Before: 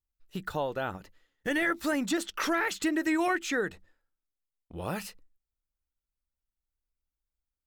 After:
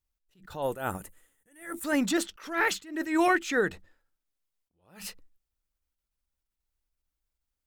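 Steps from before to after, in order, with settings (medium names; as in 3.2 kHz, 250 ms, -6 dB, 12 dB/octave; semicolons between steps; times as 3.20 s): 0.62–1.84 s: resonant high shelf 6.6 kHz +13 dB, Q 3; attacks held to a fixed rise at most 130 dB/s; trim +4.5 dB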